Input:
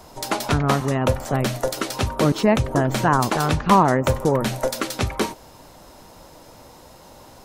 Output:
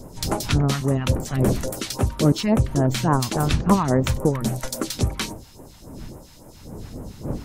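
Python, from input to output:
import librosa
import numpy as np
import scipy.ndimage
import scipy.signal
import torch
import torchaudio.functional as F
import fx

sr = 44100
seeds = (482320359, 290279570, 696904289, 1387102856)

y = fx.dmg_wind(x, sr, seeds[0], corner_hz=370.0, level_db=-33.0)
y = fx.phaser_stages(y, sr, stages=2, low_hz=440.0, high_hz=3600.0, hz=3.6, feedback_pct=45)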